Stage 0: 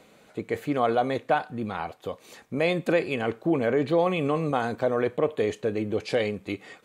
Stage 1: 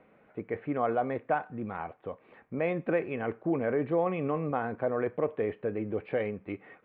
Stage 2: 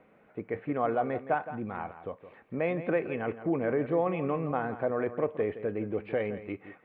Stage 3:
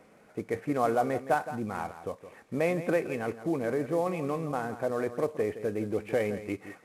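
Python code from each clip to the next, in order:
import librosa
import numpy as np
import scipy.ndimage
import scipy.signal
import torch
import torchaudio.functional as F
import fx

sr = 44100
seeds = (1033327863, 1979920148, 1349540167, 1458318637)

y1 = scipy.signal.sosfilt(scipy.signal.cheby2(4, 50, 5600.0, 'lowpass', fs=sr, output='sos'), x)
y1 = F.gain(torch.from_numpy(y1), -5.0).numpy()
y2 = y1 + 10.0 ** (-12.5 / 20.0) * np.pad(y1, (int(167 * sr / 1000.0), 0))[:len(y1)]
y3 = fx.cvsd(y2, sr, bps=64000)
y3 = fx.rider(y3, sr, range_db=5, speed_s=2.0)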